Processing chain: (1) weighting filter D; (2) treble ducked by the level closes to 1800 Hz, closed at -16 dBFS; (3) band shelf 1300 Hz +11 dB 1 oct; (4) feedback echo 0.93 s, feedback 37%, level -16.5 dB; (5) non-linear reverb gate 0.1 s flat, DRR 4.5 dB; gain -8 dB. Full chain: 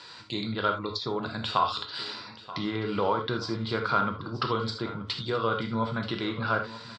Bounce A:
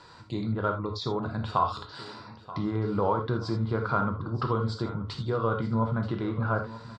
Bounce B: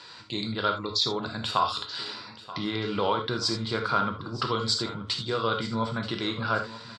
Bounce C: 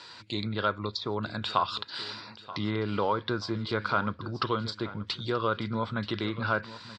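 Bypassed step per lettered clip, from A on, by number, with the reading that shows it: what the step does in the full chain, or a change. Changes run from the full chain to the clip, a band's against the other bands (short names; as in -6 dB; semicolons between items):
1, 4 kHz band -9.5 dB; 2, 8 kHz band +12.5 dB; 5, 125 Hz band +1.5 dB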